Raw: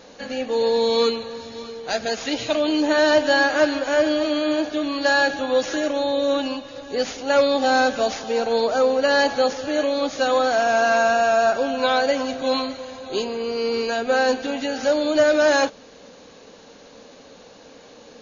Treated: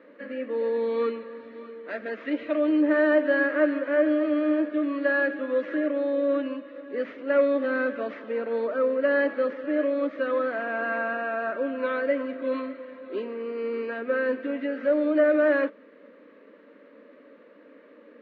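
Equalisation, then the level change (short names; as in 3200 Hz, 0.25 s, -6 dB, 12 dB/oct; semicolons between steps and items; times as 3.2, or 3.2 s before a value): speaker cabinet 180–2300 Hz, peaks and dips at 210 Hz +5 dB, 300 Hz +7 dB, 590 Hz +10 dB, 860 Hz +9 dB, 1200 Hz +8 dB, 1900 Hz +8 dB; fixed phaser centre 330 Hz, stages 4; -7.5 dB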